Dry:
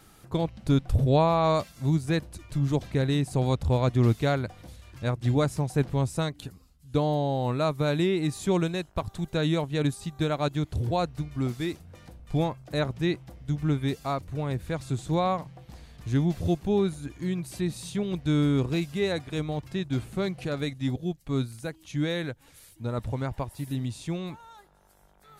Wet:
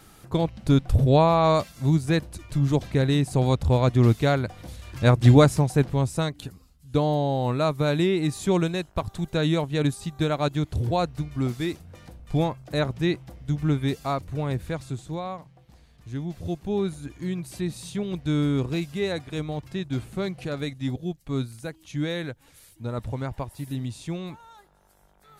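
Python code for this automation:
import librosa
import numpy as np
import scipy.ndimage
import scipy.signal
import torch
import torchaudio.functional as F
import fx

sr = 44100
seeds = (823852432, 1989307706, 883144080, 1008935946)

y = fx.gain(x, sr, db=fx.line((4.46, 3.5), (5.22, 11.5), (5.91, 2.5), (14.62, 2.5), (15.23, -7.5), (16.21, -7.5), (16.93, 0.0)))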